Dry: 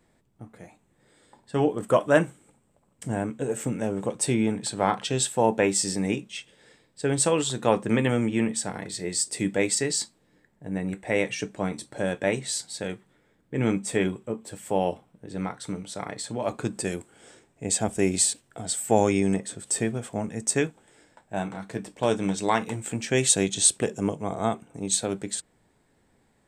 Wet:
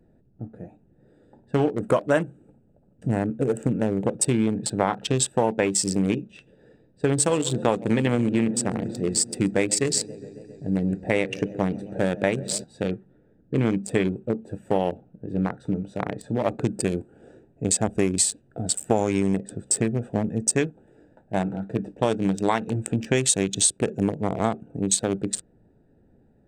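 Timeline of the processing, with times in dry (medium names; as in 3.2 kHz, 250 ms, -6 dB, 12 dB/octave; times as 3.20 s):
7.02–12.64 s: modulated delay 135 ms, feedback 79%, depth 118 cents, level -18 dB
whole clip: local Wiener filter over 41 samples; compression 4:1, threshold -27 dBFS; trim +8.5 dB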